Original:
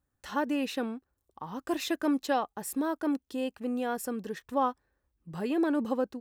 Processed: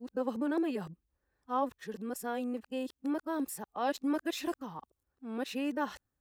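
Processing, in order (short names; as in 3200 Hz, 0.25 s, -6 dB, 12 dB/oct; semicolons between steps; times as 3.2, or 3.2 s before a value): whole clip reversed; gain -4 dB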